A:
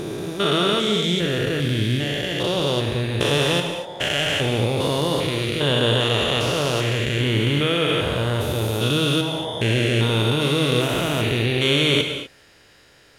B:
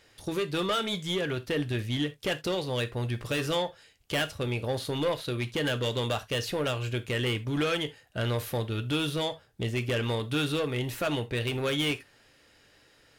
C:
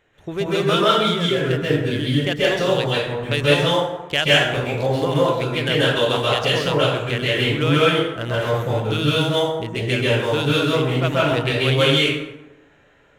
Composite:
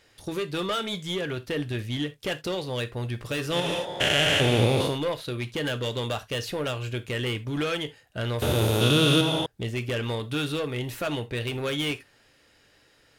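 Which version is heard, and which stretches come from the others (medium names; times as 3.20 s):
B
3.61–4.87 s: from A, crossfade 0.24 s
8.42–9.46 s: from A
not used: C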